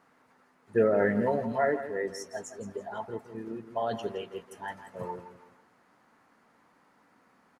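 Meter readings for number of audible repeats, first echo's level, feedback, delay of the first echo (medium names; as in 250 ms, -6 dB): 3, -12.0 dB, 34%, 166 ms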